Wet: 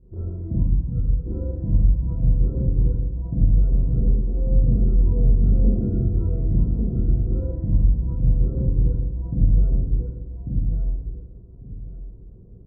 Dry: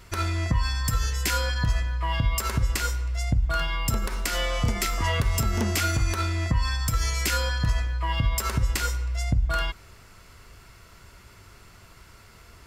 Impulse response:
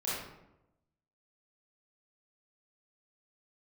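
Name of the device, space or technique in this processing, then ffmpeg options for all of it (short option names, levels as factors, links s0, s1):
next room: -filter_complex "[0:a]lowpass=f=390:w=0.5412,lowpass=f=390:w=1.3066[s0];[1:a]atrim=start_sample=2205[s1];[s0][s1]afir=irnorm=-1:irlink=0,asettb=1/sr,asplit=3[s2][s3][s4];[s2]atrim=end=5.374[s5];[s3]atrim=start=5.37:end=6.57,asetpts=PTS-STARTPTS,afade=t=in:d=0.004:c=qsin,afade=t=out:st=1.196:d=0.004:c=qsin,equalizer=f=2800:t=o:w=1.2:g=10.5[s6];[s4]atrim=start=6.566[s7];[s5][s6]acrossfade=d=0.004:c1=hsin:c2=qsin[s8];[s8][s7]acrossfade=d=0.004:c1=qsin:c2=hsin,aecho=1:1:1145|2290|3435:0.668|0.14|0.0295"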